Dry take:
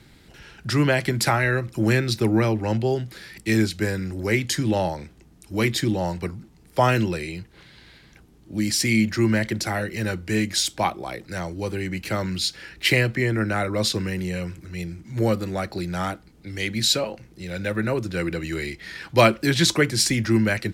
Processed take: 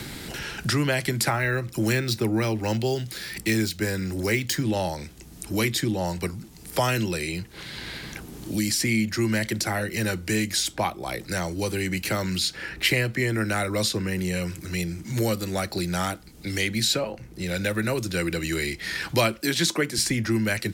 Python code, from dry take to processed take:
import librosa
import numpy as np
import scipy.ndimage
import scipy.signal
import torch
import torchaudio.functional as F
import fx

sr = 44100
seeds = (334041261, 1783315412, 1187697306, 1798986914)

y = fx.resample_linear(x, sr, factor=2, at=(1.3, 4.63))
y = fx.highpass(y, sr, hz=170.0, slope=24, at=(19.4, 19.98))
y = fx.high_shelf(y, sr, hz=5400.0, db=10.0)
y = fx.band_squash(y, sr, depth_pct=70)
y = y * 10.0 ** (-3.0 / 20.0)